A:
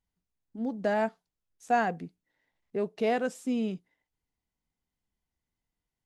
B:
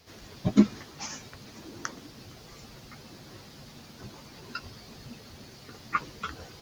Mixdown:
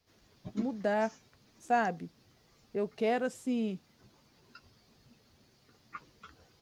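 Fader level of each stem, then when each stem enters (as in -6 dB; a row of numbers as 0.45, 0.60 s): -2.5, -17.0 dB; 0.00, 0.00 s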